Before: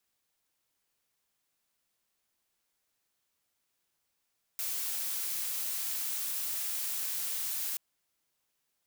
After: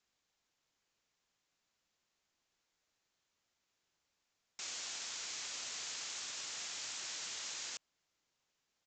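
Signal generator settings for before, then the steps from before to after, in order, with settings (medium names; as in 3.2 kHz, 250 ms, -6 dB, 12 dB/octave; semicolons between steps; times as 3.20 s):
noise blue, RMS -34.5 dBFS 3.18 s
resampled via 16 kHz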